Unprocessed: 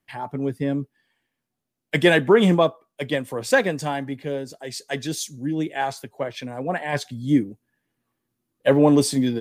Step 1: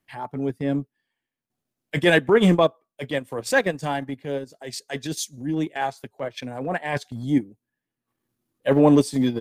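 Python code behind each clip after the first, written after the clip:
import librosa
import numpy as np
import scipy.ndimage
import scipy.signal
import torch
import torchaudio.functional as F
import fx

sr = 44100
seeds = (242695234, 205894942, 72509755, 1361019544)

y = fx.transient(x, sr, attack_db=-7, sustain_db=-11)
y = y * 10.0 ** (1.5 / 20.0)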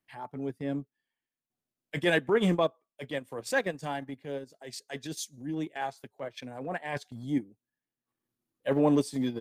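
y = fx.low_shelf(x, sr, hz=120.0, db=-4.0)
y = y * 10.0 ** (-8.0 / 20.0)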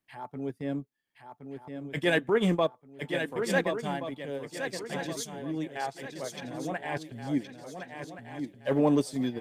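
y = fx.echo_swing(x, sr, ms=1425, ratio=3, feedback_pct=34, wet_db=-7.0)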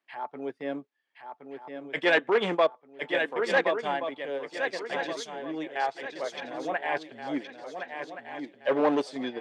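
y = np.clip(10.0 ** (20.0 / 20.0) * x, -1.0, 1.0) / 10.0 ** (20.0 / 20.0)
y = fx.bandpass_edges(y, sr, low_hz=460.0, high_hz=3500.0)
y = y * 10.0 ** (6.0 / 20.0)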